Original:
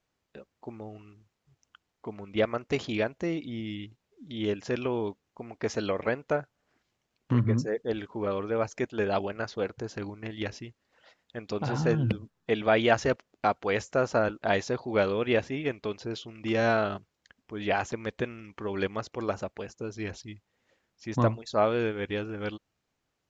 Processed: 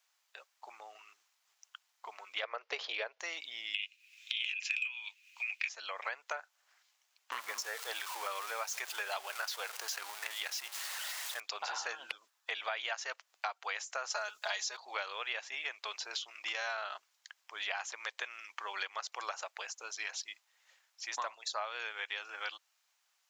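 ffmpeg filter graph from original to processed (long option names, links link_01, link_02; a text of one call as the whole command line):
ffmpeg -i in.wav -filter_complex "[0:a]asettb=1/sr,asplit=3[link_01][link_02][link_03];[link_01]atrim=end=2.434[link_04];[link_02]atrim=start=2.43:end=3.2,asetpts=PTS-STARTPTS,afade=type=in:duration=0.004:curve=qsin,afade=type=out:start_time=0.766:duration=0.004:curve=qsin,lowpass=frequency=4900:width=0.5412,lowpass=frequency=4900:width=1.3066,equalizer=frequency=460:width_type=o:width=0.79:gain=13.5[link_05];[link_03]atrim=start=3.196[link_06];[link_04][link_05]acrossfade=duration=0.004:curve1=hsin:curve2=qsin[link_07];[link_07][link_06]acrossfade=duration=0.004:curve1=qsin:curve2=hsin,asettb=1/sr,asplit=3[link_08][link_09][link_10];[link_08]atrim=end=3.744[link_11];[link_09]atrim=start=3.74:end=5.69,asetpts=PTS-STARTPTS,afade=type=in:duration=0.004:curve=qsin,afade=type=out:start_time=1.946:duration=0.004:curve=qsin,highpass=frequency=2500:width_type=q:width=13,acontrast=72[link_12];[link_10]atrim=start=5.686[link_13];[link_11][link_12]acrossfade=duration=0.004:curve1=hsin:curve2=qsin[link_14];[link_14][link_13]acrossfade=duration=0.004:curve1=qsin:curve2=hsin,asettb=1/sr,asplit=3[link_15][link_16][link_17];[link_15]atrim=end=7.324[link_18];[link_16]atrim=start=7.32:end=11.4,asetpts=PTS-STARTPTS,afade=type=in:duration=0.004:curve=qsin,afade=type=out:start_time=4.076:duration=0.004:curve=qsin,aeval=exprs='val(0)+0.5*0.0119*sgn(val(0))':channel_layout=same,highpass=220[link_19];[link_17]atrim=start=11.396[link_20];[link_18][link_19]acrossfade=duration=0.004:curve1=hsin:curve2=qsin[link_21];[link_21][link_20]acrossfade=duration=0.004:curve1=qsin:curve2=hsin,asettb=1/sr,asplit=3[link_22][link_23][link_24];[link_22]atrim=end=14.104[link_25];[link_23]atrim=start=14.1:end=14.77,asetpts=PTS-STARTPTS,afade=type=in:duration=0.004:curve=qsin,afade=type=out:start_time=0.666:duration=0.004:curve=qsin,acrossover=split=6500[link_26][link_27];[link_27]acompressor=threshold=-59dB:ratio=4:attack=1:release=60[link_28];[link_26][link_28]amix=inputs=2:normalize=0,bass=frequency=250:gain=-1,treble=frequency=4000:gain=13,aecho=1:1:4.8:0.89,atrim=end_sample=29547[link_29];[link_24]atrim=start=14.766[link_30];[link_25][link_29]acrossfade=duration=0.004:curve1=hsin:curve2=qsin[link_31];[link_31][link_30]acrossfade=duration=0.004:curve1=qsin:curve2=hsin,highpass=frequency=810:width=0.5412,highpass=frequency=810:width=1.3066,highshelf=frequency=3200:gain=9.5,acompressor=threshold=-37dB:ratio=6,volume=2dB" out.wav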